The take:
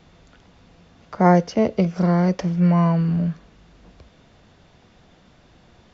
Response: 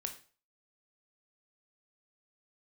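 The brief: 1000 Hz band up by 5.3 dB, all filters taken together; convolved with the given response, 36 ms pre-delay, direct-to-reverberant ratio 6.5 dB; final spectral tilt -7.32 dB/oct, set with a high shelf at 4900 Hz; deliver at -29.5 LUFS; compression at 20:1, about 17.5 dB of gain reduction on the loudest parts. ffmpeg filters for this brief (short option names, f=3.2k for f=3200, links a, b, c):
-filter_complex "[0:a]equalizer=f=1k:t=o:g=7.5,highshelf=f=4.9k:g=-8,acompressor=threshold=-23dB:ratio=20,asplit=2[a][b];[1:a]atrim=start_sample=2205,adelay=36[c];[b][c]afir=irnorm=-1:irlink=0,volume=-5.5dB[d];[a][d]amix=inputs=2:normalize=0,volume=-2dB"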